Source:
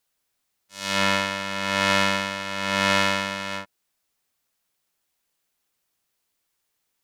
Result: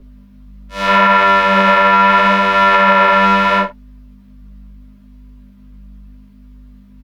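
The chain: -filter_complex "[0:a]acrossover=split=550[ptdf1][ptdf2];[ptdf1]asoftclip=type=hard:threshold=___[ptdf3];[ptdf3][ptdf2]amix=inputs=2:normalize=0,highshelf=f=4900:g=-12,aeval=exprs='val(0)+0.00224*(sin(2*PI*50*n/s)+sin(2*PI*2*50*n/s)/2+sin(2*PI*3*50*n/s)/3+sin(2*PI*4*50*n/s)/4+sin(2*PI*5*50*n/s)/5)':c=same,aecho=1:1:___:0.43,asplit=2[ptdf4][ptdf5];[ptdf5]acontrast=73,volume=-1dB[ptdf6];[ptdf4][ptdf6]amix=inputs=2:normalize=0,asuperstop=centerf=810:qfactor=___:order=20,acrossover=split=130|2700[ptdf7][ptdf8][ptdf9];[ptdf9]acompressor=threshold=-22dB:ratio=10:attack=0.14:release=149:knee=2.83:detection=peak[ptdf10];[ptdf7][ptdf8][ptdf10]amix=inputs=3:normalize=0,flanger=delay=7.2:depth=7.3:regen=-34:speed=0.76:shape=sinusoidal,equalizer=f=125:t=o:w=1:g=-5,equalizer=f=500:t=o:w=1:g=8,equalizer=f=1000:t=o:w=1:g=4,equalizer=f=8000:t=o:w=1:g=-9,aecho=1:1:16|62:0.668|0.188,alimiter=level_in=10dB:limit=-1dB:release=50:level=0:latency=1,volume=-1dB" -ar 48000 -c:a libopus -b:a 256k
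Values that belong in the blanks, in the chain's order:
-36dB, 5, 6.5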